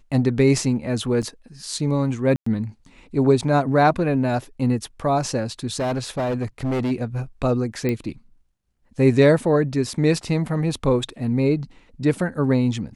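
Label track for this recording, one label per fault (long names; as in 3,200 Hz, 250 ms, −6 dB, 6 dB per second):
1.220000	1.230000	drop-out 7.1 ms
2.360000	2.460000	drop-out 104 ms
5.790000	6.920000	clipping −20 dBFS
7.890000	7.890000	click −12 dBFS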